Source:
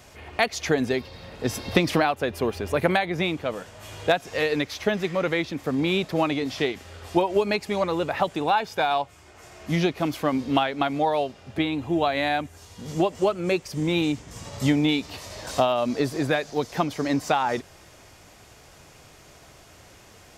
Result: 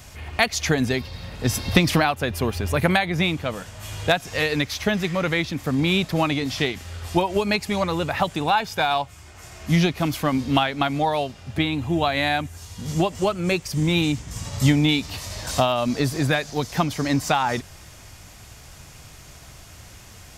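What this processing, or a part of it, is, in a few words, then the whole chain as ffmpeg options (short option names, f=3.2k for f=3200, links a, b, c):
smiley-face EQ: -af "lowshelf=f=180:g=8.5,equalizer=f=420:t=o:w=1.6:g=-6.5,highshelf=f=5.4k:g=5.5,volume=3.5dB"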